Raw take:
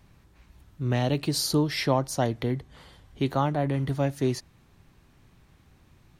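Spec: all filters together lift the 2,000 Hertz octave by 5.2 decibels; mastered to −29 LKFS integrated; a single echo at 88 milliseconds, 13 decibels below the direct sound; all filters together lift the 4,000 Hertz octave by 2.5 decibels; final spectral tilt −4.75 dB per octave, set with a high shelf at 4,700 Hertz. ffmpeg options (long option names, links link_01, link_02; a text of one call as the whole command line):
ffmpeg -i in.wav -af "equalizer=frequency=2000:width_type=o:gain=6,equalizer=frequency=4000:width_type=o:gain=6,highshelf=frequency=4700:gain=-8,aecho=1:1:88:0.224,volume=-2.5dB" out.wav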